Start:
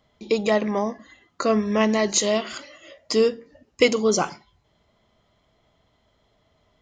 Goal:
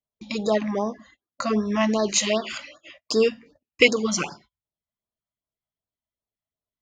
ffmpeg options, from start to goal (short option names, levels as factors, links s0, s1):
-filter_complex "[0:a]agate=range=0.0282:threshold=0.00501:ratio=16:detection=peak,asettb=1/sr,asplit=3[s0][s1][s2];[s0]atrim=end=2.044[s3];[s1]atrim=start=2.04:end=4.3,asetpts=PTS-STARTPTS,afade=t=in:d=0.004:c=qsin,afade=t=out:st=2.256:d=0.004:c=qsin,equalizer=f=2500:w=2.9:g=11.5[s4];[s2]atrim=start=4.296[s5];[s3][s4]acrossfade=d=0.004:c1=hsin:c2=qsin[s6];[s6][s5]acrossfade=d=0.004:c1=qsin:c2=hsin,afftfilt=real='re*(1-between(b*sr/1024,350*pow(2600/350,0.5+0.5*sin(2*PI*2.6*pts/sr))/1.41,350*pow(2600/350,0.5+0.5*sin(2*PI*2.6*pts/sr))*1.41))':imag='im*(1-between(b*sr/1024,350*pow(2600/350,0.5+0.5*sin(2*PI*2.6*pts/sr))/1.41,350*pow(2600/350,0.5+0.5*sin(2*PI*2.6*pts/sr))*1.41))':win_size=1024:overlap=0.75,volume=0.891"